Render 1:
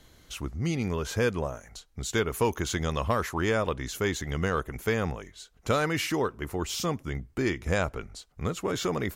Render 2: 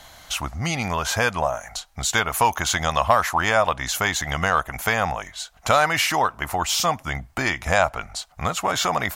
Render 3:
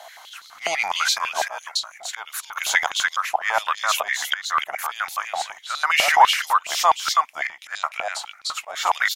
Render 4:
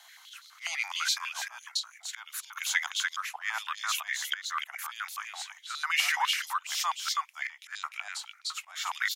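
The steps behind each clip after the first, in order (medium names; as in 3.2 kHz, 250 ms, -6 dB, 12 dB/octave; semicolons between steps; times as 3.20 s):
resonant low shelf 540 Hz -9 dB, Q 3; in parallel at +1.5 dB: compression, threshold -36 dBFS, peak gain reduction 15 dB; on the sum: trim +6.5 dB
slow attack 325 ms; delay 299 ms -4 dB; step-sequenced high-pass 12 Hz 680–4100 Hz; trim -1 dB
Bessel high-pass 1.6 kHz, order 8; trim -6.5 dB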